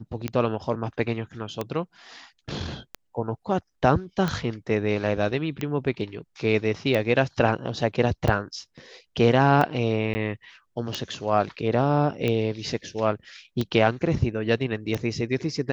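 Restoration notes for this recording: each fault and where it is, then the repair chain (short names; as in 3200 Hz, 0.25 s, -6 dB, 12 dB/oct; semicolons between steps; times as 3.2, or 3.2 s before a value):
tick 45 rpm -13 dBFS
10.14–10.15 gap 10 ms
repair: de-click; interpolate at 10.14, 10 ms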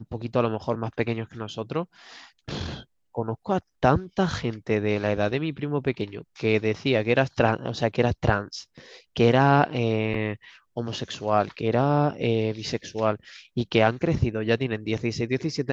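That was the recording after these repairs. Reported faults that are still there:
none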